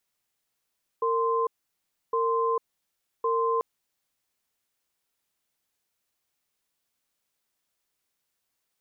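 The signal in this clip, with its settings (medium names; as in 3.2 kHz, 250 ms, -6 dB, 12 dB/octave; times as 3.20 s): cadence 458 Hz, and 1.04 kHz, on 0.45 s, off 0.66 s, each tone -25 dBFS 2.59 s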